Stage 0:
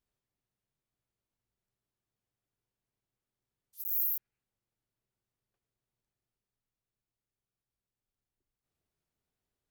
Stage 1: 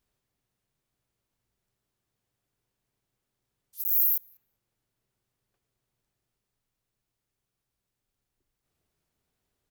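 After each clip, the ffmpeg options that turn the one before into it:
ffmpeg -i in.wav -filter_complex "[0:a]asplit=2[link_01][link_02];[link_02]adelay=193,lowpass=frequency=2500:poles=1,volume=-19dB,asplit=2[link_03][link_04];[link_04]adelay=193,lowpass=frequency=2500:poles=1,volume=0.34,asplit=2[link_05][link_06];[link_06]adelay=193,lowpass=frequency=2500:poles=1,volume=0.34[link_07];[link_01][link_03][link_05][link_07]amix=inputs=4:normalize=0,volume=7.5dB" out.wav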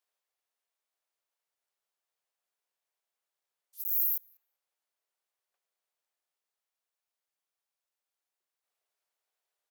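ffmpeg -i in.wav -af "highpass=frequency=540:width=0.5412,highpass=frequency=540:width=1.3066,volume=-5dB" out.wav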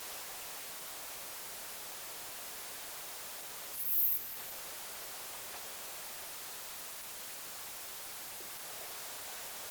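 ffmpeg -i in.wav -af "aeval=exprs='val(0)+0.5*0.0237*sgn(val(0))':channel_layout=same,volume=-2.5dB" -ar 48000 -c:a libopus -b:a 16k out.opus

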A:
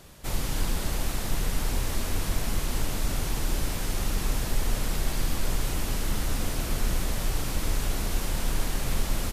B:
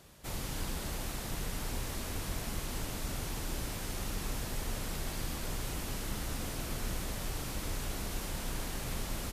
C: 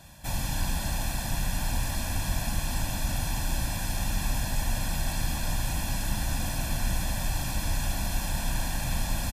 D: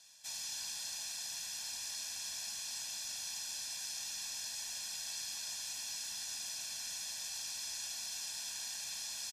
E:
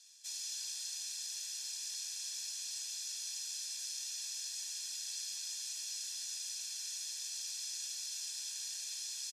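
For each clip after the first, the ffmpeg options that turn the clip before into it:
ffmpeg -i in.wav -af "highpass=frequency=47:poles=1,volume=-6.5dB" out.wav
ffmpeg -i in.wav -af "aecho=1:1:1.2:0.94,volume=4dB" out.wav
ffmpeg -i in.wav -af "bandpass=frequency=5600:width_type=q:width=1.9:csg=0,volume=1dB" out.wav
ffmpeg -i in.wav -af "bandpass=frequency=6400:width_type=q:width=0.68:csg=0,volume=1dB" out.wav

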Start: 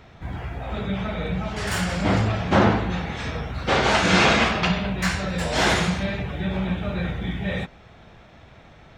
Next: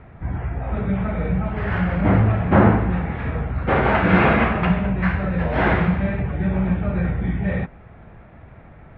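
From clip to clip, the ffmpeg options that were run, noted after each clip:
ffmpeg -i in.wav -af "lowpass=frequency=2200:width=0.5412,lowpass=frequency=2200:width=1.3066,lowshelf=frequency=250:gain=6,volume=1dB" out.wav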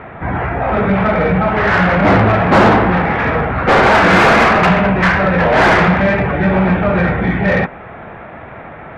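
ffmpeg -i in.wav -filter_complex "[0:a]asplit=2[link_01][link_02];[link_02]highpass=frequency=720:poles=1,volume=26dB,asoftclip=type=tanh:threshold=-2dB[link_03];[link_01][link_03]amix=inputs=2:normalize=0,lowpass=frequency=2000:poles=1,volume=-6dB,volume=1dB" out.wav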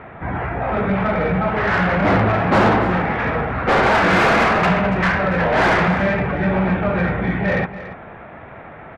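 ffmpeg -i in.wav -af "aecho=1:1:284:0.188,volume=-5.5dB" out.wav

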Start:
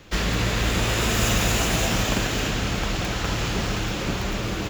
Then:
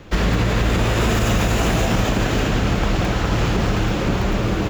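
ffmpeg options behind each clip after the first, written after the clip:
ffmpeg -i in.wav -af "highshelf=frequency=2100:gain=-10.5,alimiter=limit=-17dB:level=0:latency=1:release=55,volume=8dB" out.wav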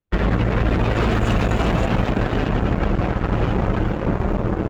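ffmpeg -i in.wav -af "afftdn=noise_reduction=20:noise_floor=-24,aeval=exprs='0.355*(cos(1*acos(clip(val(0)/0.355,-1,1)))-cos(1*PI/2))+0.00708*(cos(3*acos(clip(val(0)/0.355,-1,1)))-cos(3*PI/2))+0.0501*(cos(7*acos(clip(val(0)/0.355,-1,1)))-cos(7*PI/2))':channel_layout=same" out.wav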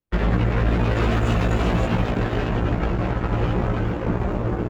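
ffmpeg -i in.wav -filter_complex "[0:a]asplit=2[link_01][link_02];[link_02]adelay=17,volume=-3.5dB[link_03];[link_01][link_03]amix=inputs=2:normalize=0,volume=-4dB" out.wav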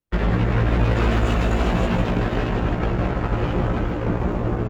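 ffmpeg -i in.wav -af "aecho=1:1:157:0.422" out.wav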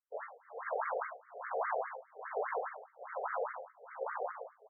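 ffmpeg -i in.wav -af "tremolo=f=1.2:d=0.96,afftfilt=real='re*between(b*sr/1024,550*pow(1600/550,0.5+0.5*sin(2*PI*4.9*pts/sr))/1.41,550*pow(1600/550,0.5+0.5*sin(2*PI*4.9*pts/sr))*1.41)':imag='im*between(b*sr/1024,550*pow(1600/550,0.5+0.5*sin(2*PI*4.9*pts/sr))/1.41,550*pow(1600/550,0.5+0.5*sin(2*PI*4.9*pts/sr))*1.41)':win_size=1024:overlap=0.75,volume=-3dB" out.wav

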